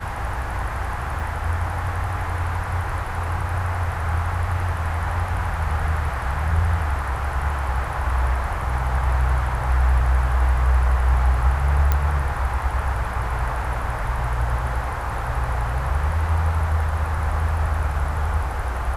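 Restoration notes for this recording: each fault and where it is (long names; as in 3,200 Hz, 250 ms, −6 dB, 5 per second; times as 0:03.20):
0:01.20: drop-out 2.7 ms
0:11.92: click −7 dBFS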